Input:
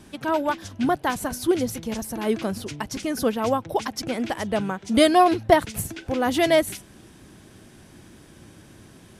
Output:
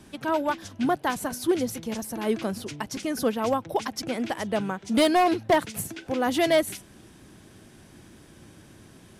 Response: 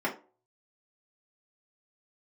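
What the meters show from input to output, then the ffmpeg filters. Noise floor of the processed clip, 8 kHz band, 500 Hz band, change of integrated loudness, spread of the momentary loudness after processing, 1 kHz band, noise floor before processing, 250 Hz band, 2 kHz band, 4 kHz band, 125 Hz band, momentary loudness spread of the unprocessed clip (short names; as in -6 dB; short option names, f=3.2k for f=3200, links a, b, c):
-52 dBFS, -2.0 dB, -3.0 dB, -3.0 dB, 11 LU, -3.5 dB, -50 dBFS, -2.5 dB, -2.5 dB, -2.5 dB, -4.5 dB, 12 LU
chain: -filter_complex "[0:a]acrossover=split=110[a][b];[a]acompressor=threshold=-52dB:ratio=6[c];[b]asoftclip=type=hard:threshold=-13dB[d];[c][d]amix=inputs=2:normalize=0,volume=-2dB"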